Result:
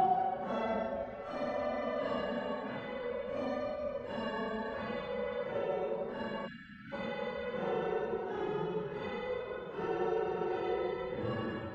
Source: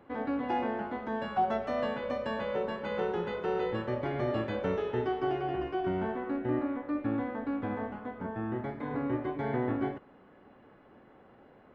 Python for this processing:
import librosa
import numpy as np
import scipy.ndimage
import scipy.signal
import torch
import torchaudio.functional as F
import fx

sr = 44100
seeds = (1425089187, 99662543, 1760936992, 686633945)

y = fx.paulstretch(x, sr, seeds[0], factor=4.8, window_s=0.05, from_s=1.4)
y = fx.spec_erase(y, sr, start_s=6.47, length_s=0.46, low_hz=320.0, high_hz=1300.0)
y = y * 10.0 ** (-4.0 / 20.0)